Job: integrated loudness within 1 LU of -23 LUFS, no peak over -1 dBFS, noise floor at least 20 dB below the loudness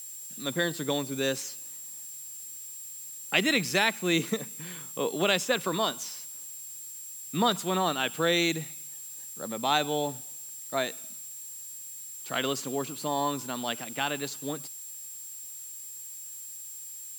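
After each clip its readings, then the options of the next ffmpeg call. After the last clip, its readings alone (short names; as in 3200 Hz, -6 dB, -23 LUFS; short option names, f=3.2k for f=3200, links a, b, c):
steady tone 7500 Hz; tone level -41 dBFS; noise floor -42 dBFS; noise floor target -51 dBFS; loudness -30.5 LUFS; peak -9.0 dBFS; loudness target -23.0 LUFS
-> -af "bandreject=f=7.5k:w=30"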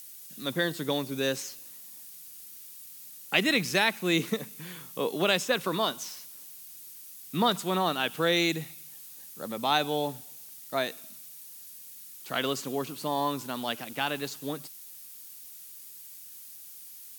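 steady tone none; noise floor -47 dBFS; noise floor target -49 dBFS
-> -af "afftdn=nr=6:nf=-47"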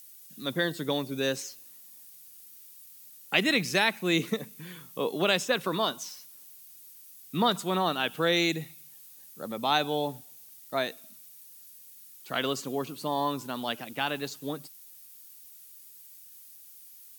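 noise floor -51 dBFS; loudness -29.0 LUFS; peak -9.0 dBFS; loudness target -23.0 LUFS
-> -af "volume=6dB"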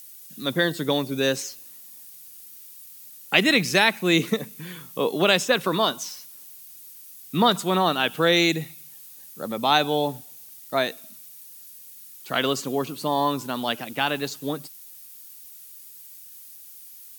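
loudness -23.0 LUFS; peak -3.0 dBFS; noise floor -45 dBFS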